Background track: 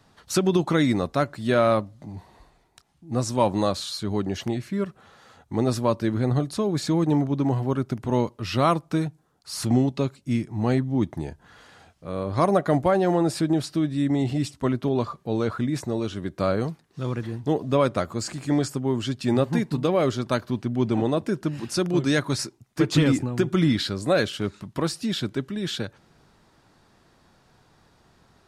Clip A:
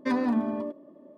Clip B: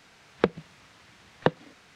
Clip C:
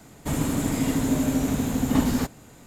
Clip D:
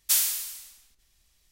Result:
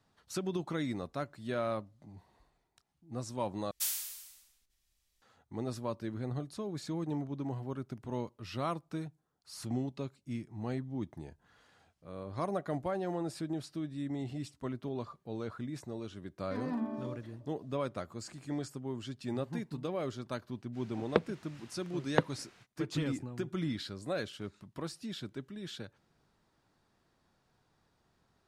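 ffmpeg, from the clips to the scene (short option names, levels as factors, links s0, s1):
-filter_complex "[0:a]volume=0.188[s0];[1:a]dynaudnorm=f=110:g=3:m=2.51[s1];[s0]asplit=2[s2][s3];[s2]atrim=end=3.714[s4];[4:a]atrim=end=1.51,asetpts=PTS-STARTPTS,volume=0.266[s5];[s3]atrim=start=5.216[s6];[s1]atrim=end=1.17,asetpts=PTS-STARTPTS,volume=0.133,afade=t=in:d=0.004:c=hsin,afade=t=out:st=1.166:d=0.004:c=hsin,adelay=16450[s7];[2:a]atrim=end=1.95,asetpts=PTS-STARTPTS,volume=0.531,afade=t=in:d=0.05,afade=t=out:st=1.9:d=0.05,adelay=20720[s8];[s4][s5]acrossfade=d=0.004:c1=hsin:c2=hsin[s9];[s9][s6]acrossfade=d=0.004:c1=hsin:c2=hsin[s10];[s10][s7][s8]amix=inputs=3:normalize=0"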